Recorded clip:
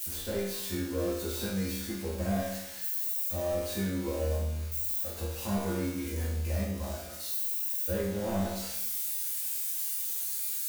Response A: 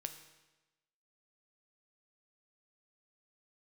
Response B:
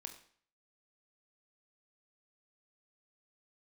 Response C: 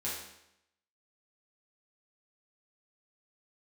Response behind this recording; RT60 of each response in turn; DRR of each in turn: C; 1.1, 0.50, 0.80 seconds; 7.0, 5.0, −7.5 decibels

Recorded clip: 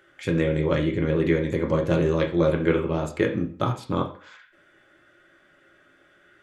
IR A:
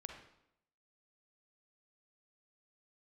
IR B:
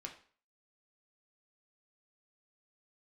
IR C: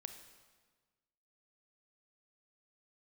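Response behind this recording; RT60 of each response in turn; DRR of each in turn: B; 0.80, 0.45, 1.4 seconds; 3.0, 1.0, 7.0 decibels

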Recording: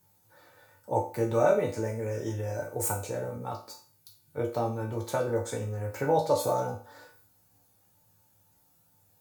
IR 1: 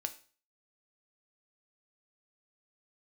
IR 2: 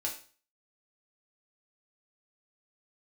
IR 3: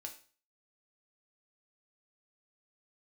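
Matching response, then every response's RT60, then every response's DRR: 2; 0.40, 0.40, 0.40 seconds; 7.5, −2.0, 2.5 decibels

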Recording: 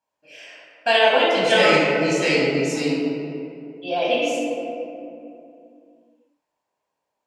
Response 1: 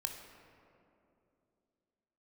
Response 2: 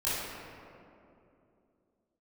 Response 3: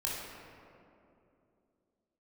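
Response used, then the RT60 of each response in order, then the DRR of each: 3; 2.8, 2.7, 2.7 seconds; 3.5, −12.0, −5.5 decibels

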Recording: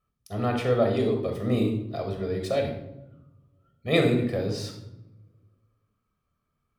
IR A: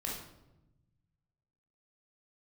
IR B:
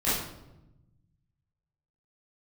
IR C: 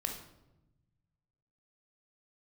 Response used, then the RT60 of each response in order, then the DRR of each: C; 0.95, 0.95, 0.95 seconds; −3.0, −12.0, 3.0 decibels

